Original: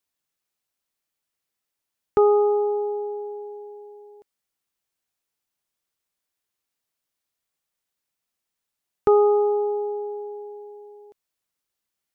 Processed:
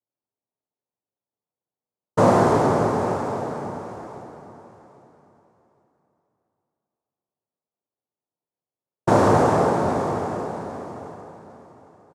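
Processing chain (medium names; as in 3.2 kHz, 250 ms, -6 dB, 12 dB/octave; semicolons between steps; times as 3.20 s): elliptic low-pass 620 Hz; noise-vocoded speech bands 2; feedback delay 806 ms, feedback 25%, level -15 dB; plate-style reverb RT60 2.7 s, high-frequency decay 0.7×, DRR 0 dB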